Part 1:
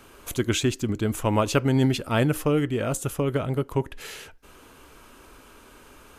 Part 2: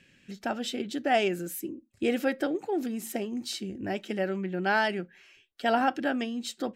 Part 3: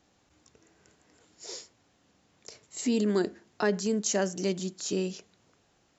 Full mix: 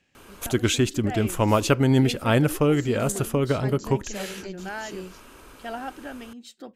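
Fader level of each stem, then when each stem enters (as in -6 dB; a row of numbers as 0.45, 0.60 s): +2.0, -9.0, -8.5 dB; 0.15, 0.00, 0.00 s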